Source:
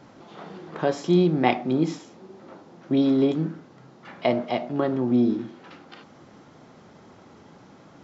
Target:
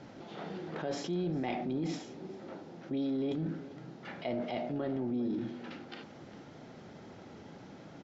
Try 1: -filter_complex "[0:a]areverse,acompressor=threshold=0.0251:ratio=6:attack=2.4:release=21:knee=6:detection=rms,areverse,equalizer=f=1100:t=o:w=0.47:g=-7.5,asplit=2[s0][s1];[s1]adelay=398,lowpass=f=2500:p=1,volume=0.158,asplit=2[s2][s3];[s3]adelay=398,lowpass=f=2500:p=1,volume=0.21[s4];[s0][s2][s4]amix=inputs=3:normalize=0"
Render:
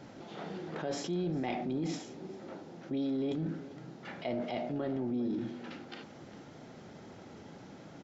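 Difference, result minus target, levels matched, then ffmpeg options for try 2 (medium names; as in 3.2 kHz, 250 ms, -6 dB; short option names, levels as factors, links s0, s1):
8 kHz band +3.5 dB
-filter_complex "[0:a]areverse,acompressor=threshold=0.0251:ratio=6:attack=2.4:release=21:knee=6:detection=rms,areverse,lowpass=6300,equalizer=f=1100:t=o:w=0.47:g=-7.5,asplit=2[s0][s1];[s1]adelay=398,lowpass=f=2500:p=1,volume=0.158,asplit=2[s2][s3];[s3]adelay=398,lowpass=f=2500:p=1,volume=0.21[s4];[s0][s2][s4]amix=inputs=3:normalize=0"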